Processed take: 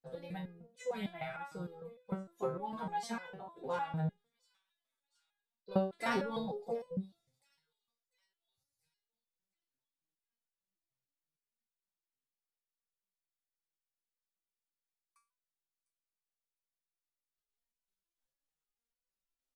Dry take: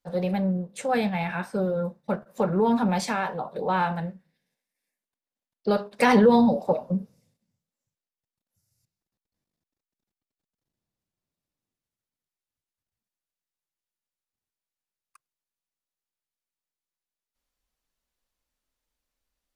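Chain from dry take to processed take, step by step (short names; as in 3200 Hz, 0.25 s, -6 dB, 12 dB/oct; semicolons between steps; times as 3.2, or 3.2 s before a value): thin delay 0.698 s, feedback 44%, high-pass 4700 Hz, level -16.5 dB; pitch shift -1 st; stepped resonator 6.6 Hz 130–500 Hz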